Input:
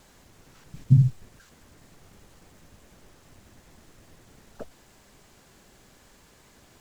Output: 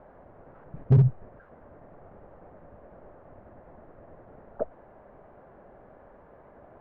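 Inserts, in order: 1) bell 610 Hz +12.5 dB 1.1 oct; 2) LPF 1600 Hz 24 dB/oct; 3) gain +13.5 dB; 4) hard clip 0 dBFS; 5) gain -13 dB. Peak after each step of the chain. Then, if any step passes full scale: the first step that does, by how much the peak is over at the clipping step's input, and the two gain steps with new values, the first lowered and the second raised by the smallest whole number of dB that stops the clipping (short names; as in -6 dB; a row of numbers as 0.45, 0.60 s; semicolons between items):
-5.5, -5.5, +8.0, 0.0, -13.0 dBFS; step 3, 8.0 dB; step 3 +5.5 dB, step 5 -5 dB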